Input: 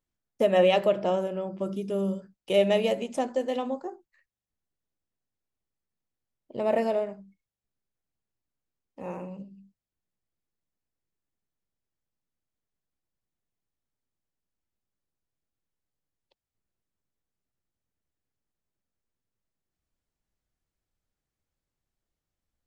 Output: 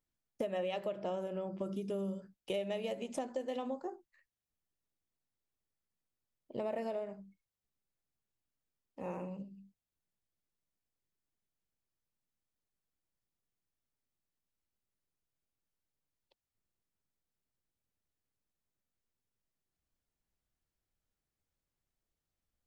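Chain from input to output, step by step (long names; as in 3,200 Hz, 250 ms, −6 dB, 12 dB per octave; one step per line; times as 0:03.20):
downward compressor 6 to 1, threshold −31 dBFS, peak gain reduction 13.5 dB
level −3.5 dB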